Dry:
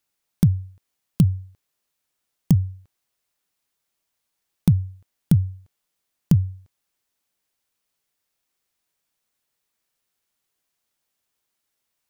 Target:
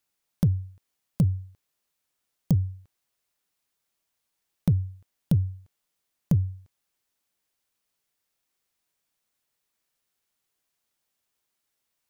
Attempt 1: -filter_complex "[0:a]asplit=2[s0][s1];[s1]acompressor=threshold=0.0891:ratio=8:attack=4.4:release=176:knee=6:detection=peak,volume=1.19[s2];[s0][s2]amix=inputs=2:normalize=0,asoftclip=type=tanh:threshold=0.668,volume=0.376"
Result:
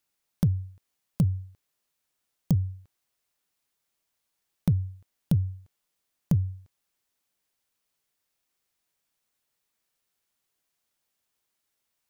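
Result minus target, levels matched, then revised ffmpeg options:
compression: peak gain reduction +5.5 dB
-filter_complex "[0:a]asplit=2[s0][s1];[s1]acompressor=threshold=0.188:ratio=8:attack=4.4:release=176:knee=6:detection=peak,volume=1.19[s2];[s0][s2]amix=inputs=2:normalize=0,asoftclip=type=tanh:threshold=0.668,volume=0.376"

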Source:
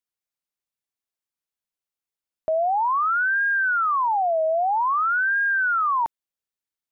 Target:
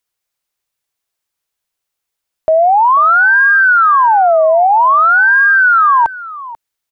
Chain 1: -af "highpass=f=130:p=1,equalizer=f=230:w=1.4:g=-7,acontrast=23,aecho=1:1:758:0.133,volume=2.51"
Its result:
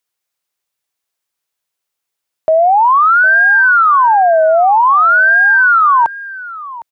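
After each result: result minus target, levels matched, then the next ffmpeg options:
echo 269 ms late; 125 Hz band -3.5 dB
-af "highpass=f=130:p=1,equalizer=f=230:w=1.4:g=-7,acontrast=23,aecho=1:1:489:0.133,volume=2.51"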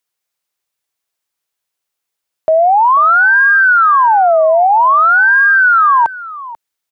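125 Hz band -3.5 dB
-af "equalizer=f=230:w=1.4:g=-7,acontrast=23,aecho=1:1:489:0.133,volume=2.51"

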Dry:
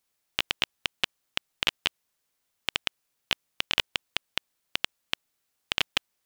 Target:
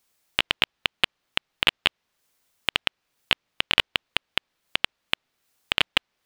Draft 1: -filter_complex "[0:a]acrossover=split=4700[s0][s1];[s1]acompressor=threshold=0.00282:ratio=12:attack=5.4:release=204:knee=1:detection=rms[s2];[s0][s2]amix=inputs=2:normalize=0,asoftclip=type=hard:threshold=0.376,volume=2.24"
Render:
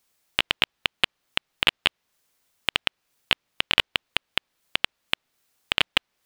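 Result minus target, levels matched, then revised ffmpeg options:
compression: peak gain reduction -6.5 dB
-filter_complex "[0:a]acrossover=split=4700[s0][s1];[s1]acompressor=threshold=0.00126:ratio=12:attack=5.4:release=204:knee=1:detection=rms[s2];[s0][s2]amix=inputs=2:normalize=0,asoftclip=type=hard:threshold=0.376,volume=2.24"

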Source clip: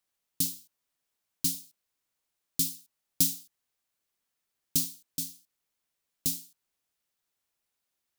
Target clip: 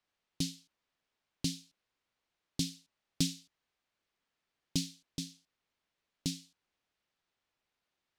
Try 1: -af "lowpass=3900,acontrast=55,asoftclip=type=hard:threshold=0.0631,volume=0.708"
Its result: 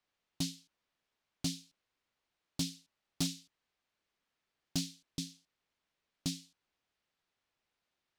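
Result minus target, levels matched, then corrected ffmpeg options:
hard clipper: distortion +18 dB
-af "lowpass=3900,acontrast=55,asoftclip=type=hard:threshold=0.168,volume=0.708"

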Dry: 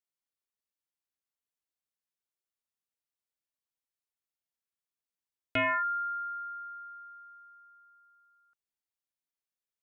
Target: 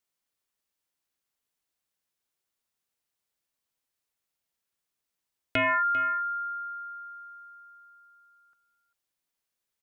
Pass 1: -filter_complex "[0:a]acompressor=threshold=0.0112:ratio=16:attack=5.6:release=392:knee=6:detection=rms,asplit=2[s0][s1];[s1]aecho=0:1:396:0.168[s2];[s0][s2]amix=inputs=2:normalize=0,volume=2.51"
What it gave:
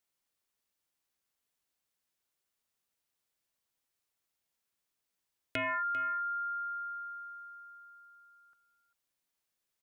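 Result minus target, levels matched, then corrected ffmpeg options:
compression: peak gain reduction +9 dB
-filter_complex "[0:a]acompressor=threshold=0.0335:ratio=16:attack=5.6:release=392:knee=6:detection=rms,asplit=2[s0][s1];[s1]aecho=0:1:396:0.168[s2];[s0][s2]amix=inputs=2:normalize=0,volume=2.51"

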